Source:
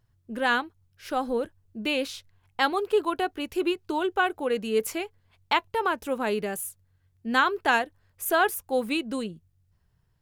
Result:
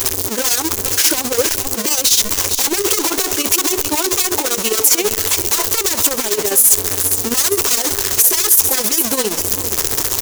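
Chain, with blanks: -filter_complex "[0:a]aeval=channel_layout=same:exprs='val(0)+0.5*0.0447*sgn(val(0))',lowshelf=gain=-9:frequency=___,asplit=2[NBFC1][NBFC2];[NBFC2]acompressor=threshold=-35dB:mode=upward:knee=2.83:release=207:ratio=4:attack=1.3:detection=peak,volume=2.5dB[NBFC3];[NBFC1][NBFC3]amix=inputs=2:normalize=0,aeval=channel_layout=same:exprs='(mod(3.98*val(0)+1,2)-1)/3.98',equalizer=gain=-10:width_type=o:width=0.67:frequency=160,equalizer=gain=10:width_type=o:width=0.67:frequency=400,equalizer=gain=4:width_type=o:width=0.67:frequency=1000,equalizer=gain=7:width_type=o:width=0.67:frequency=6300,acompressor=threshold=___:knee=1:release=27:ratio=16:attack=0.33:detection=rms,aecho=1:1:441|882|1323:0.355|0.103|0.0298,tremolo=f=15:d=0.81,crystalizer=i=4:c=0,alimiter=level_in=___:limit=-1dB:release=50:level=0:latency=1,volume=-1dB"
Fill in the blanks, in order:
150, -22dB, 13.5dB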